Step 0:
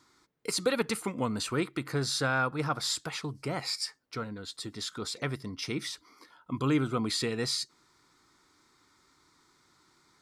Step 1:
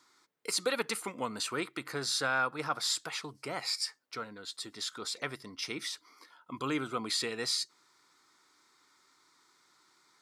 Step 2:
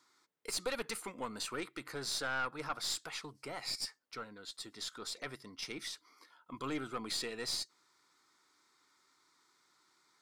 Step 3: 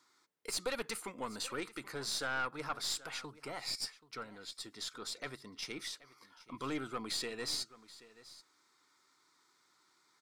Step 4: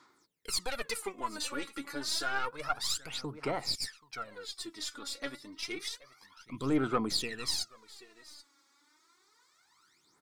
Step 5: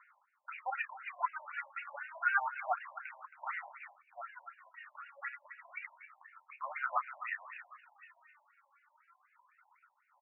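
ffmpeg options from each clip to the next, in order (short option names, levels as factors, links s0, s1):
-af "highpass=f=610:p=1"
-af "aeval=exprs='(tanh(15.8*val(0)+0.45)-tanh(0.45))/15.8':c=same,volume=0.708"
-af "aecho=1:1:780:0.119"
-af "aphaser=in_gain=1:out_gain=1:delay=3.6:decay=0.75:speed=0.29:type=sinusoidal"
-filter_complex "[0:a]asplit=2[s0][s1];[s1]adelay=31,volume=0.299[s2];[s0][s2]amix=inputs=2:normalize=0,asplit=2[s3][s4];[s4]adelay=270,highpass=300,lowpass=3400,asoftclip=type=hard:threshold=0.0631,volume=0.2[s5];[s3][s5]amix=inputs=2:normalize=0,afftfilt=real='re*between(b*sr/1024,740*pow(2100/740,0.5+0.5*sin(2*PI*4*pts/sr))/1.41,740*pow(2100/740,0.5+0.5*sin(2*PI*4*pts/sr))*1.41)':imag='im*between(b*sr/1024,740*pow(2100/740,0.5+0.5*sin(2*PI*4*pts/sr))/1.41,740*pow(2100/740,0.5+0.5*sin(2*PI*4*pts/sr))*1.41)':win_size=1024:overlap=0.75,volume=1.78"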